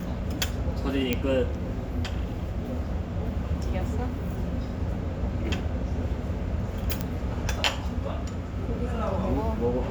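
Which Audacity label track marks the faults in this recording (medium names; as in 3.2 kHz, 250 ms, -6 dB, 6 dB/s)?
1.130000	1.130000	pop -10 dBFS
7.010000	7.010000	pop -13 dBFS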